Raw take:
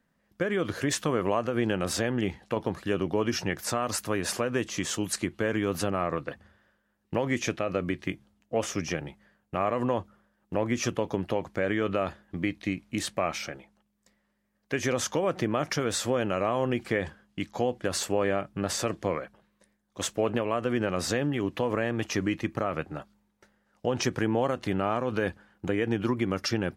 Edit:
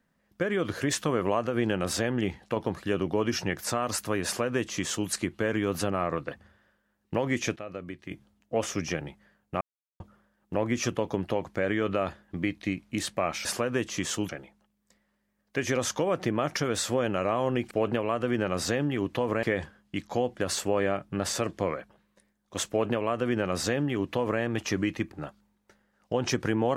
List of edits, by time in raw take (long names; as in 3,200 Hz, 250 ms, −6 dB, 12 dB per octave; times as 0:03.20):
0:04.25–0:05.09: duplicate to 0:13.45
0:07.56–0:08.11: clip gain −9.5 dB
0:09.61–0:10.00: silence
0:20.13–0:21.85: duplicate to 0:16.87
0:22.56–0:22.85: remove